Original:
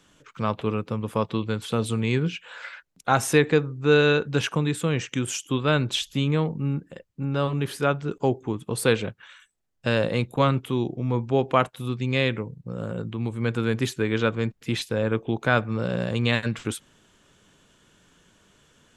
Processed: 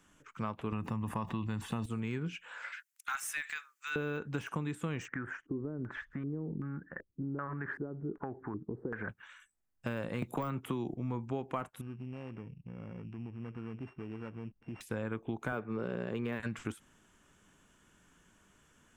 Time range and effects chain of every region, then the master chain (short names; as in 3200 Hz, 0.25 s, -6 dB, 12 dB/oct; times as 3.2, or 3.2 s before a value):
0.72–1.86 comb 1.1 ms, depth 53% + fast leveller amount 70%
2.72–3.96 HPF 1400 Hz 24 dB/oct + high shelf 2400 Hz +11 dB
5.08–9.09 resonant high shelf 2200 Hz -8 dB, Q 3 + compressor, threshold -28 dBFS + LFO low-pass square 1.3 Hz 380–1700 Hz
10.22–10.94 bell 890 Hz +2.5 dB 2.3 oct + hard clip -10.5 dBFS + three-band squash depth 100%
11.81–14.81 sample sorter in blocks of 16 samples + compressor 2.5:1, threshold -34 dBFS + tape spacing loss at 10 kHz 42 dB
15.52–16.4 BPF 130–4600 Hz + bell 410 Hz +12 dB 0.4 oct
whole clip: de-esser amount 90%; ten-band EQ 125 Hz -5 dB, 500 Hz -7 dB, 4000 Hz -11 dB; compressor, threshold -29 dBFS; gain -3 dB